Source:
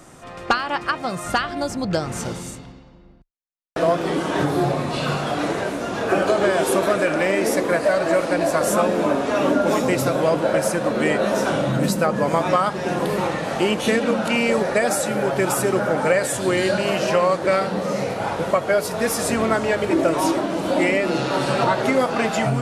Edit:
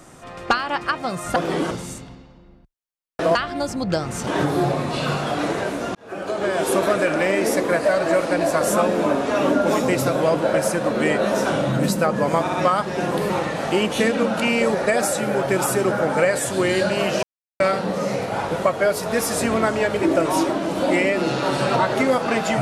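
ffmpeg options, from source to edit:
-filter_complex "[0:a]asplit=10[a][b][c][d][e][f][g][h][i][j];[a]atrim=end=1.362[k];[b]atrim=start=3.918:end=4.272[l];[c]atrim=start=2.278:end=3.922[m];[d]atrim=start=1.358:end=2.282[n];[e]atrim=start=4.268:end=5.95,asetpts=PTS-STARTPTS,afade=t=out:st=1.678:d=0.004:c=hsin[o];[f]atrim=start=5.95:end=12.472,asetpts=PTS-STARTPTS,afade=t=in:d=0.83[p];[g]atrim=start=12.408:end=12.472[q];[h]atrim=start=12.408:end=17.11,asetpts=PTS-STARTPTS,afade=t=out:st=4.698:d=0.004:c=hsin[r];[i]atrim=start=17.11:end=17.48,asetpts=PTS-STARTPTS,volume=0[s];[j]atrim=start=17.48,asetpts=PTS-STARTPTS,afade=t=in:d=0.004:c=hsin[t];[k][l]acrossfade=d=0.004:c1=hsin:c2=hsin[u];[u][m]acrossfade=d=0.004:c1=hsin:c2=hsin[v];[v][n]acrossfade=d=0.004:c1=hsin:c2=hsin[w];[o][p]concat=n=2:v=0:a=1[x];[w][x]acrossfade=d=0.004:c1=hsin:c2=hsin[y];[y][q]acrossfade=d=0.004:c1=hsin:c2=hsin[z];[r][s][t]concat=n=3:v=0:a=1[aa];[z][aa]acrossfade=d=0.004:c1=hsin:c2=hsin"

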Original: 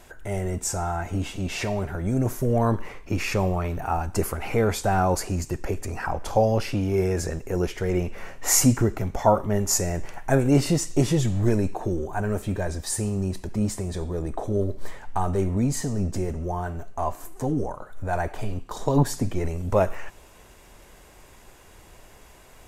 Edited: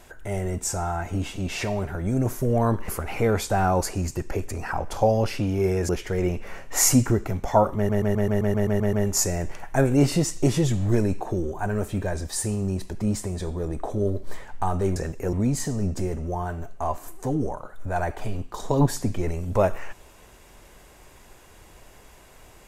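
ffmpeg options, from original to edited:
-filter_complex "[0:a]asplit=14[a][b][c][d][e][f][g][h][i][j][k][l][m][n];[a]atrim=end=2.882[o];[b]atrim=start=4.218:end=7.232[p];[c]atrim=start=7.598:end=9.602[q];[d]atrim=start=9.468:end=9.602[r];[e]atrim=start=9.468:end=9.602[s];[f]atrim=start=9.468:end=9.602[t];[g]atrim=start=9.468:end=9.602[u];[h]atrim=start=9.468:end=9.602[v];[i]atrim=start=9.468:end=9.602[w];[j]atrim=start=9.468:end=9.602[x];[k]atrim=start=9.468:end=9.602[y];[l]atrim=start=9.468:end=15.502[z];[m]atrim=start=7.228:end=7.602[aa];[n]atrim=start=15.498[ab];[o][p]acrossfade=d=0.004:c1=hsin:c2=hsin[ac];[ac][q]acrossfade=d=0.004:c1=hsin:c2=hsin[ad];[ad][r]acrossfade=d=0.004:c1=hsin:c2=hsin[ae];[ae][s]acrossfade=d=0.004:c1=hsin:c2=hsin[af];[af][t]acrossfade=d=0.004:c1=hsin:c2=hsin[ag];[ag][u]acrossfade=d=0.004:c1=hsin:c2=hsin[ah];[ah][v]acrossfade=d=0.004:c1=hsin:c2=hsin[ai];[ai][w]acrossfade=d=0.004:c1=hsin:c2=hsin[aj];[aj][x]acrossfade=d=0.004:c1=hsin:c2=hsin[ak];[ak][y]acrossfade=d=0.004:c1=hsin:c2=hsin[al];[al][z]acrossfade=d=0.004:c1=hsin:c2=hsin[am];[am][aa]acrossfade=d=0.004:c1=hsin:c2=hsin[an];[an][ab]acrossfade=d=0.004:c1=hsin:c2=hsin"

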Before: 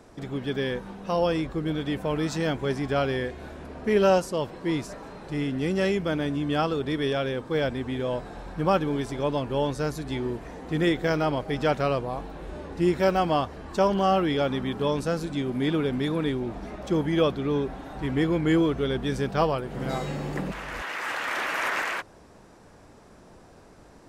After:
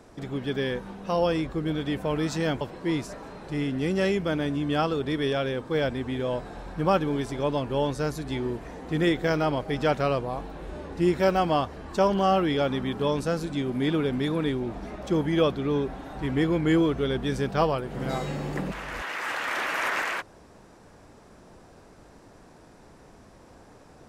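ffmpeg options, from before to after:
-filter_complex "[0:a]asplit=2[a][b];[a]atrim=end=2.612[c];[b]atrim=start=4.408[d];[c][d]acrossfade=d=0.004:c1=hsin:c2=hsin"

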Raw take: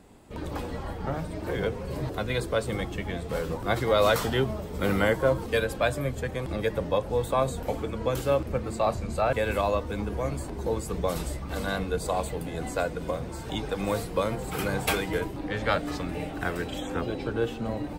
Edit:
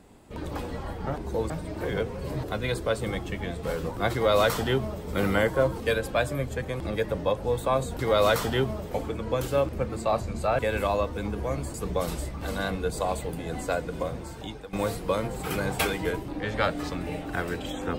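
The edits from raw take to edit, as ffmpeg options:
-filter_complex "[0:a]asplit=7[a][b][c][d][e][f][g];[a]atrim=end=1.162[h];[b]atrim=start=10.478:end=10.822[i];[c]atrim=start=1.158:end=7.652[j];[d]atrim=start=3.788:end=4.712[k];[e]atrim=start=7.648:end=10.482[l];[f]atrim=start=10.818:end=13.81,asetpts=PTS-STARTPTS,afade=t=out:st=2.402:d=0.59:silence=0.158489[m];[g]atrim=start=13.81,asetpts=PTS-STARTPTS,afade=t=in:d=0.004:c=hsin:silence=0.158489[n];[h][i]acrossfade=d=0.004:c1=hsin:c2=hsin[o];[o][j]acrossfade=d=0.004:c1=hsin:c2=hsin[p];[p][k]acrossfade=d=0.004:c1=hsin:c2=hsin[q];[q][l]acrossfade=d=0.004:c1=hsin:c2=hsin[r];[m][n]concat=n=2:v=0:a=1[s];[r][s]acrossfade=d=0.004:c1=hsin:c2=hsin"

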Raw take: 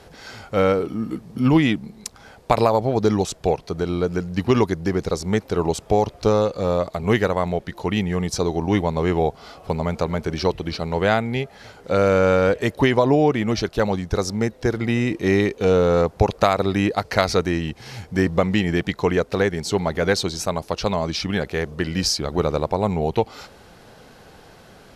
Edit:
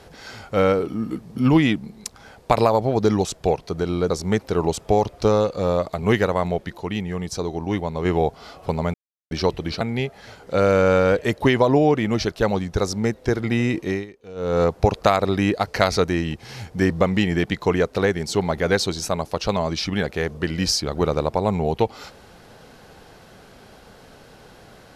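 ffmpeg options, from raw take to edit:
-filter_complex "[0:a]asplit=9[a][b][c][d][e][f][g][h][i];[a]atrim=end=4.102[j];[b]atrim=start=5.108:end=7.782[k];[c]atrim=start=7.778:end=9.062,asetpts=PTS-STARTPTS,volume=-4.5dB[l];[d]atrim=start=9.058:end=9.95,asetpts=PTS-STARTPTS,afade=t=out:st=0.888:d=0.004:c=hsin[m];[e]atrim=start=9.95:end=10.32,asetpts=PTS-STARTPTS,volume=0[n];[f]atrim=start=10.32:end=10.822,asetpts=PTS-STARTPTS,afade=t=in:d=0.004:c=hsin[o];[g]atrim=start=11.178:end=15.43,asetpts=PTS-STARTPTS,afade=t=out:st=3.972:d=0.28:silence=0.0891251[p];[h]atrim=start=15.43:end=15.72,asetpts=PTS-STARTPTS,volume=-21dB[q];[i]atrim=start=15.72,asetpts=PTS-STARTPTS,afade=t=in:d=0.28:silence=0.0891251[r];[j][k]acrossfade=d=0.004:c1=hsin:c2=hsin[s];[s][l]acrossfade=d=0.004:c1=hsin:c2=hsin[t];[m][n][o]concat=n=3:v=0:a=1[u];[t][u]acrossfade=d=0.004:c1=hsin:c2=hsin[v];[p][q][r]concat=n=3:v=0:a=1[w];[v][w]acrossfade=d=0.004:c1=hsin:c2=hsin"

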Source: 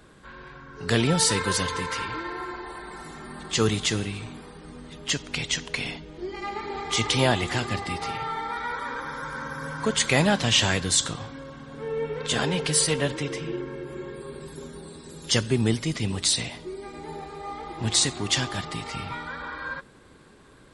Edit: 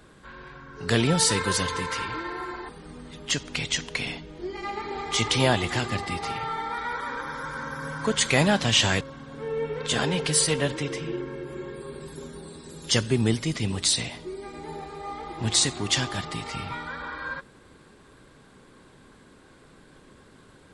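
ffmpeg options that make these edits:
-filter_complex "[0:a]asplit=3[a][b][c];[a]atrim=end=2.692[d];[b]atrim=start=4.478:end=10.802[e];[c]atrim=start=11.408[f];[d][e]acrossfade=d=0.004:c1=hsin:c2=hsin[g];[g][f]acrossfade=d=0.004:c1=hsin:c2=hsin"

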